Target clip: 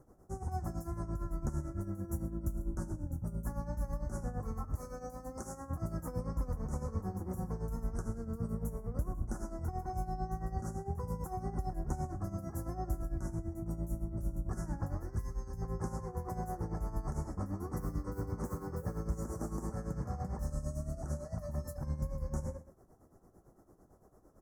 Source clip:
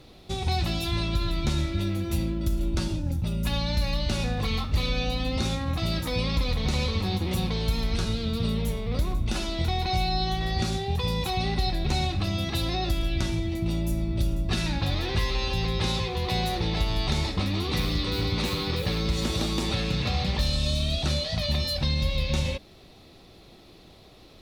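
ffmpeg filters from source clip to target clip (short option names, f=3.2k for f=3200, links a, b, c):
-filter_complex "[0:a]asettb=1/sr,asplit=3[a][b][c];[a]atrim=end=4.754[d];[b]atrim=start=4.75:end=5.7,asetpts=PTS-STARTPTS,afade=t=in:d=0.004:c=qsin,afade=t=out:st=0.946:d=0.004:c=qsin,bass=f=250:g=-11,treble=f=4k:g=6[e];[c]atrim=start=5.696[f];[d][e]acrossfade=d=0.004:c1=hsin:c2=qsin[g];[g][f]acrossfade=d=0.004:c1=qsin:c2=hsin,asuperstop=centerf=3200:order=8:qfactor=0.65,asettb=1/sr,asplit=3[h][i][j];[h]atrim=end=15.034[k];[i]atrim=start=15.03:end=15.62,asetpts=PTS-STARTPTS,afade=t=in:d=0.004:c=qsin,afade=t=out:st=0.586:d=0.004:c=qsin,equalizer=f=740:w=0.62:g=-10.5[l];[j]atrim=start=15.616[m];[k][l]acrossfade=d=0.004:c1=hsin:c2=qsin[n];[n][m]acrossfade=d=0.004:c1=qsin:c2=hsin,asplit=2[o][p];[p]adelay=128.3,volume=-15dB,highshelf=f=4k:g=-2.89[q];[o][q]amix=inputs=2:normalize=0,tremolo=f=8.9:d=0.72,volume=-7.5dB"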